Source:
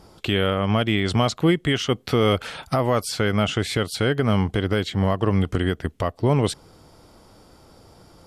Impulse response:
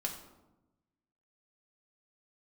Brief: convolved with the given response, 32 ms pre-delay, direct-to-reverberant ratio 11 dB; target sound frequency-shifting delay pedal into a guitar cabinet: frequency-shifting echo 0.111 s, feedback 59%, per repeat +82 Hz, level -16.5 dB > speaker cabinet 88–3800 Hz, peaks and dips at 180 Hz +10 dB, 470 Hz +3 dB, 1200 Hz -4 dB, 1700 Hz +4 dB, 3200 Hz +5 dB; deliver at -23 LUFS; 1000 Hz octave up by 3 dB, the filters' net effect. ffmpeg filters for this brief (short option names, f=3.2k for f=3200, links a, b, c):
-filter_complex "[0:a]equalizer=f=1k:t=o:g=5.5,asplit=2[a][b];[1:a]atrim=start_sample=2205,adelay=32[c];[b][c]afir=irnorm=-1:irlink=0,volume=-12.5dB[d];[a][d]amix=inputs=2:normalize=0,asplit=7[e][f][g][h][i][j][k];[f]adelay=111,afreqshift=82,volume=-16.5dB[l];[g]adelay=222,afreqshift=164,volume=-21.1dB[m];[h]adelay=333,afreqshift=246,volume=-25.7dB[n];[i]adelay=444,afreqshift=328,volume=-30.2dB[o];[j]adelay=555,afreqshift=410,volume=-34.8dB[p];[k]adelay=666,afreqshift=492,volume=-39.4dB[q];[e][l][m][n][o][p][q]amix=inputs=7:normalize=0,highpass=88,equalizer=f=180:t=q:w=4:g=10,equalizer=f=470:t=q:w=4:g=3,equalizer=f=1.2k:t=q:w=4:g=-4,equalizer=f=1.7k:t=q:w=4:g=4,equalizer=f=3.2k:t=q:w=4:g=5,lowpass=f=3.8k:w=0.5412,lowpass=f=3.8k:w=1.3066,volume=-4.5dB"